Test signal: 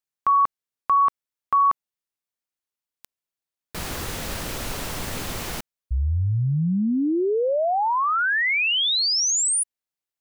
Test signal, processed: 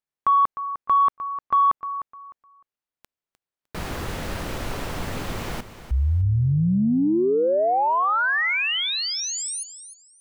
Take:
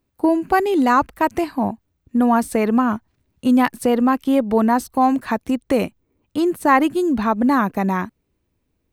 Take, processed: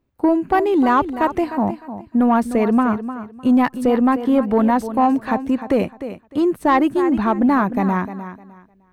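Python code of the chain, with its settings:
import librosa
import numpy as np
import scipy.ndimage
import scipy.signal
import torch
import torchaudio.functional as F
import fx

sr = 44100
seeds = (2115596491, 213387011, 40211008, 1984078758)

p1 = x + fx.echo_feedback(x, sr, ms=304, feedback_pct=23, wet_db=-12.5, dry=0)
p2 = 10.0 ** (-8.5 / 20.0) * np.tanh(p1 / 10.0 ** (-8.5 / 20.0))
p3 = fx.high_shelf(p2, sr, hz=3600.0, db=-11.5)
y = p3 * 10.0 ** (2.0 / 20.0)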